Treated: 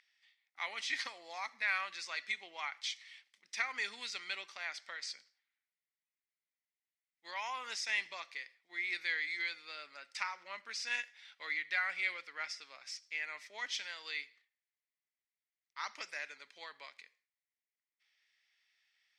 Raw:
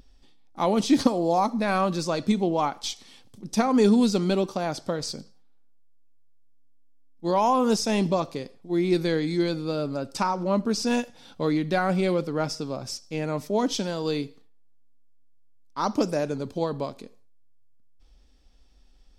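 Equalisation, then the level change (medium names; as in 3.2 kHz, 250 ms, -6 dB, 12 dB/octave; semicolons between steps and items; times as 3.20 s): resonant high-pass 2 kHz, resonance Q 6.3; distance through air 69 m; -7.5 dB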